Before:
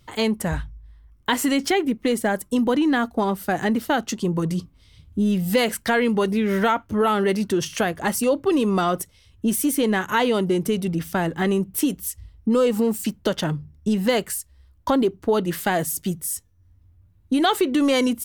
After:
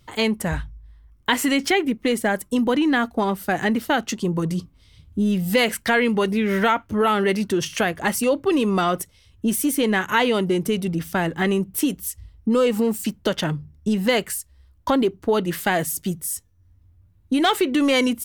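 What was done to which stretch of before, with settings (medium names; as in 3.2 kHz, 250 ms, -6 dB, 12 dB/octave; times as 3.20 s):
17.38–17.94 s: overload inside the chain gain 12.5 dB
whole clip: dynamic bell 2.3 kHz, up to +5 dB, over -37 dBFS, Q 1.3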